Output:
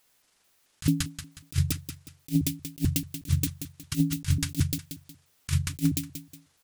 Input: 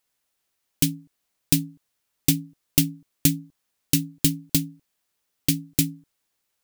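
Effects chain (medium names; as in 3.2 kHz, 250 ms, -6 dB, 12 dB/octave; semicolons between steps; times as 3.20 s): pitch shift switched off and on -11.5 st, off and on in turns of 219 ms; feedback delay 182 ms, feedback 36%, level -20 dB; compressor with a negative ratio -28 dBFS, ratio -0.5; trim +4 dB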